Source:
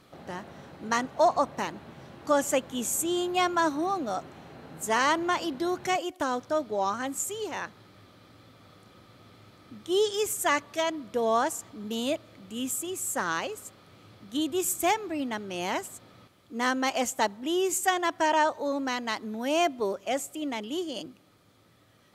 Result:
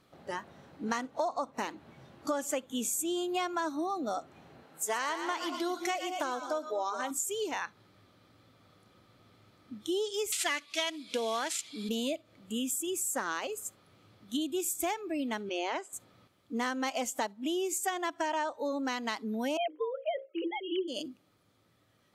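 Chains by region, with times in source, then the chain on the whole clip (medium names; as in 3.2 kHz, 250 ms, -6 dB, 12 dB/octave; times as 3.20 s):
4.63–7.11 s: high-pass 470 Hz 6 dB/octave + two-band feedback delay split 800 Hz, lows 204 ms, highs 117 ms, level -9 dB
10.32–11.89 s: CVSD coder 64 kbps + frequency weighting D
15.49–15.93 s: high-pass 300 Hz 24 dB/octave + distance through air 100 m
19.57–20.88 s: formants replaced by sine waves + hum notches 60/120/180/240/300/360/420/480/540/600 Hz
whole clip: spectral noise reduction 13 dB; compression 5:1, threshold -36 dBFS; trim +5 dB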